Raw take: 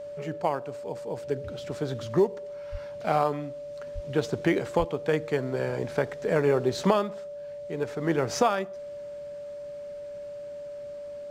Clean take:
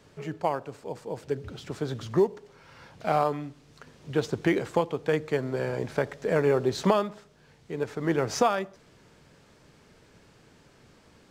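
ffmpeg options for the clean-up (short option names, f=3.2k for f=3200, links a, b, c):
-filter_complex "[0:a]bandreject=f=580:w=30,asplit=3[a][b][c];[a]afade=t=out:st=2.71:d=0.02[d];[b]highpass=f=140:w=0.5412,highpass=f=140:w=1.3066,afade=t=in:st=2.71:d=0.02,afade=t=out:st=2.83:d=0.02[e];[c]afade=t=in:st=2.83:d=0.02[f];[d][e][f]amix=inputs=3:normalize=0,asplit=3[g][h][i];[g]afade=t=out:st=3.94:d=0.02[j];[h]highpass=f=140:w=0.5412,highpass=f=140:w=1.3066,afade=t=in:st=3.94:d=0.02,afade=t=out:st=4.06:d=0.02[k];[i]afade=t=in:st=4.06:d=0.02[l];[j][k][l]amix=inputs=3:normalize=0,asplit=3[m][n][o];[m]afade=t=out:st=4.78:d=0.02[p];[n]highpass=f=140:w=0.5412,highpass=f=140:w=1.3066,afade=t=in:st=4.78:d=0.02,afade=t=out:st=4.9:d=0.02[q];[o]afade=t=in:st=4.9:d=0.02[r];[p][q][r]amix=inputs=3:normalize=0"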